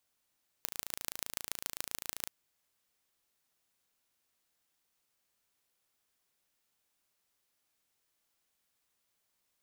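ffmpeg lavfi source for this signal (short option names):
-f lavfi -i "aevalsrc='0.473*eq(mod(n,1592),0)*(0.5+0.5*eq(mod(n,6368),0))':d=1.65:s=44100"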